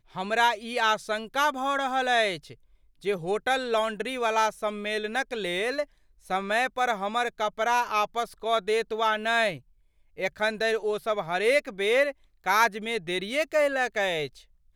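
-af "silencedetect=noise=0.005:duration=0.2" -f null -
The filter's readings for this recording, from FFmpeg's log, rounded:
silence_start: 2.55
silence_end: 3.02 | silence_duration: 0.48
silence_start: 5.85
silence_end: 6.25 | silence_duration: 0.41
silence_start: 9.60
silence_end: 10.17 | silence_duration: 0.58
silence_start: 12.12
silence_end: 12.44 | silence_duration: 0.32
silence_start: 14.42
silence_end: 14.75 | silence_duration: 0.33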